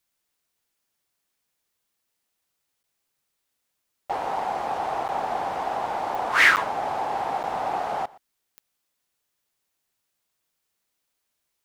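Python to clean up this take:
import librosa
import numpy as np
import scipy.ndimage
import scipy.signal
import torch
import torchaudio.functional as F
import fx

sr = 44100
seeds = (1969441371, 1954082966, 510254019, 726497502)

y = fx.fix_declick_ar(x, sr, threshold=10.0)
y = fx.fix_interpolate(y, sr, at_s=(2.83, 5.08, 6.56, 7.43), length_ms=9.1)
y = fx.fix_echo_inverse(y, sr, delay_ms=120, level_db=-22.0)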